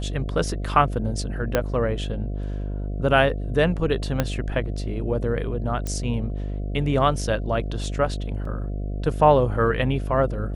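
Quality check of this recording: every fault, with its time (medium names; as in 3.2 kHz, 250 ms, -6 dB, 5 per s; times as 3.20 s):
buzz 50 Hz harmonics 14 -28 dBFS
1.55 s: pop -6 dBFS
4.20 s: pop -7 dBFS
5.87 s: pop -15 dBFS
8.45 s: dropout 3.7 ms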